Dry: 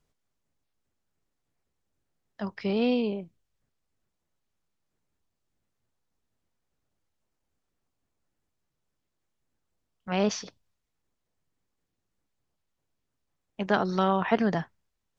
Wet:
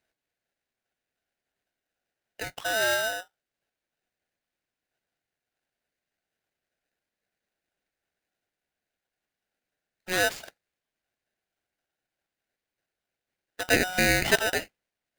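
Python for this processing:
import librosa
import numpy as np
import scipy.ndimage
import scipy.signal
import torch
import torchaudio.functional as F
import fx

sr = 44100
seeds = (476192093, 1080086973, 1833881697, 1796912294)

y = scipy.signal.medfilt(x, 9)
y = scipy.signal.sosfilt(scipy.signal.butter(4, 350.0, 'highpass', fs=sr, output='sos'), y)
y = y * np.sign(np.sin(2.0 * np.pi * 1100.0 * np.arange(len(y)) / sr))
y = y * 10.0 ** (3.5 / 20.0)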